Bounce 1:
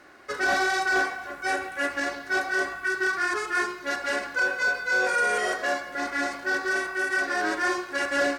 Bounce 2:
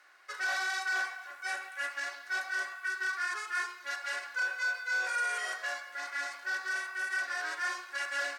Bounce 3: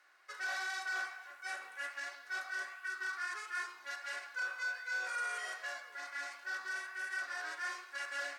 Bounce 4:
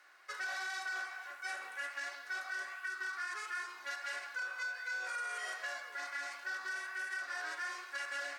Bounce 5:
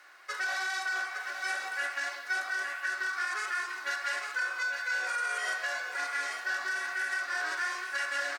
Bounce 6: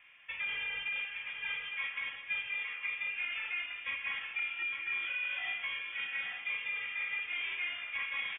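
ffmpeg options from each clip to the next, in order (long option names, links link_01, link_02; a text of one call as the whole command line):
ffmpeg -i in.wav -af "highpass=1100,volume=-6dB" out.wav
ffmpeg -i in.wav -af "flanger=delay=9:depth=9.3:regen=-88:speed=1.4:shape=sinusoidal,volume=-1.5dB" out.wav
ffmpeg -i in.wav -af "acompressor=threshold=-42dB:ratio=6,volume=4.5dB" out.wav
ffmpeg -i in.wav -af "aecho=1:1:859:0.447,volume=7dB" out.wav
ffmpeg -i in.wav -af "lowpass=frequency=3300:width_type=q:width=0.5098,lowpass=frequency=3300:width_type=q:width=0.6013,lowpass=frequency=3300:width_type=q:width=0.9,lowpass=frequency=3300:width_type=q:width=2.563,afreqshift=-3900,volume=-4dB" out.wav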